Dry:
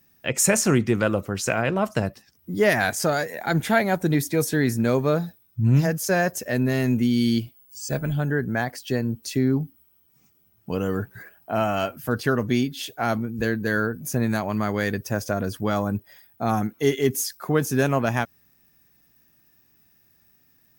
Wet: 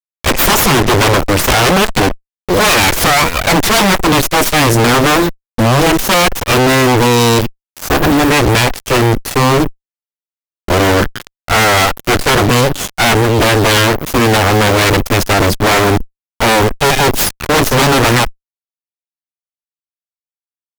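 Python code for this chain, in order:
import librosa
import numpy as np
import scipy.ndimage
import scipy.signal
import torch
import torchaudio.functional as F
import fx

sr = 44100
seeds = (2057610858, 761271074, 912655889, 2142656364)

y = fx.high_shelf(x, sr, hz=5700.0, db=-9.0)
y = fx.cheby_harmonics(y, sr, harmonics=(3, 5, 8), levels_db=(-14, -42, -6), full_scale_db=-7.5)
y = fx.fuzz(y, sr, gain_db=45.0, gate_db=-38.0)
y = y * 10.0 ** (4.5 / 20.0)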